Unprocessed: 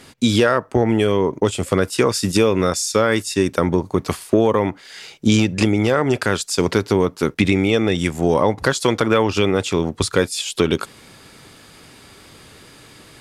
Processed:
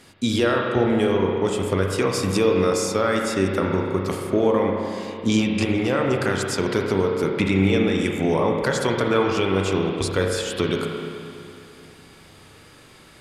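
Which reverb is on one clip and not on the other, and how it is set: spring tank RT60 2.6 s, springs 31/42 ms, chirp 55 ms, DRR 0.5 dB; gain -6 dB

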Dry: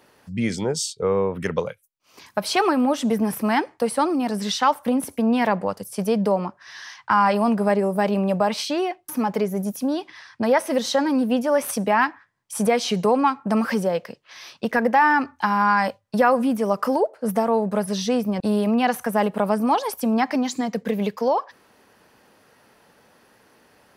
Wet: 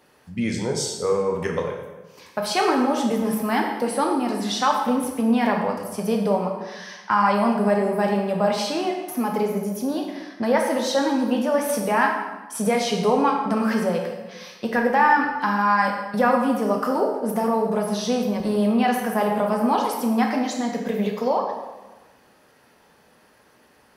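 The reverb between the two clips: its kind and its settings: plate-style reverb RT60 1.2 s, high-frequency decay 0.75×, DRR 0.5 dB; gain -3 dB

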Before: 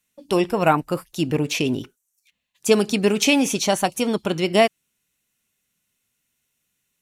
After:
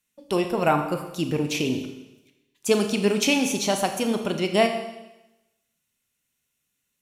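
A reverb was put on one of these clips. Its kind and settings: Schroeder reverb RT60 1 s, combs from 27 ms, DRR 6 dB; gain -4 dB

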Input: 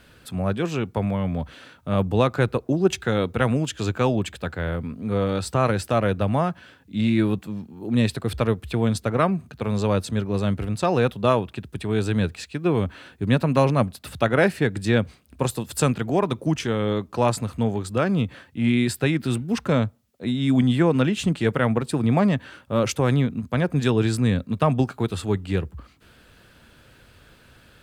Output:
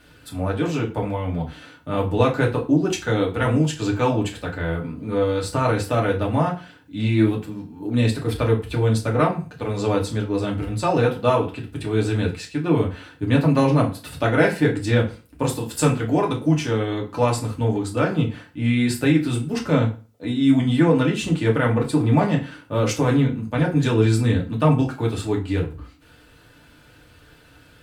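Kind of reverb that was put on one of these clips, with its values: FDN reverb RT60 0.35 s, low-frequency decay 1.05×, high-frequency decay 0.85×, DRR -2.5 dB; gain -3 dB

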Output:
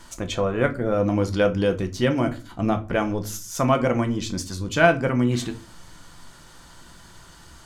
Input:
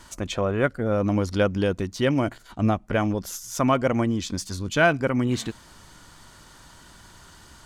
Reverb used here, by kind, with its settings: shoebox room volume 180 m³, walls furnished, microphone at 0.77 m

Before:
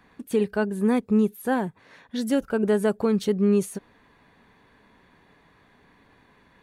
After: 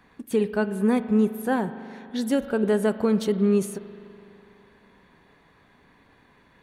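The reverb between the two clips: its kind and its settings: spring tank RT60 2.8 s, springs 41 ms, chirp 20 ms, DRR 11.5 dB

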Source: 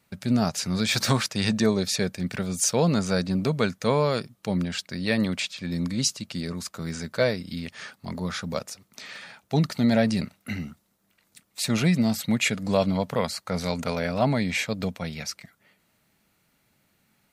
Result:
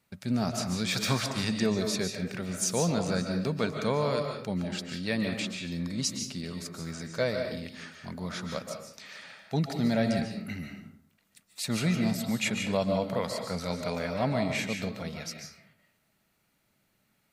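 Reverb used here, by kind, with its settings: digital reverb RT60 0.62 s, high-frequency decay 0.65×, pre-delay 0.105 s, DRR 3.5 dB; gain -6 dB

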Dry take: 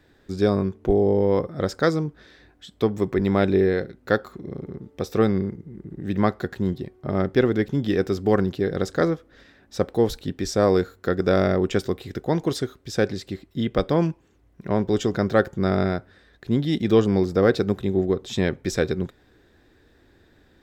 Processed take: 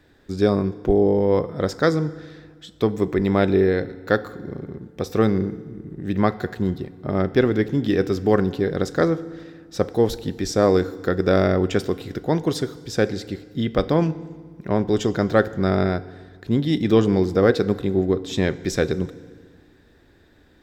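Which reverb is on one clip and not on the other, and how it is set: FDN reverb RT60 1.6 s, low-frequency decay 1.3×, high-frequency decay 0.85×, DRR 15 dB; gain +1.5 dB

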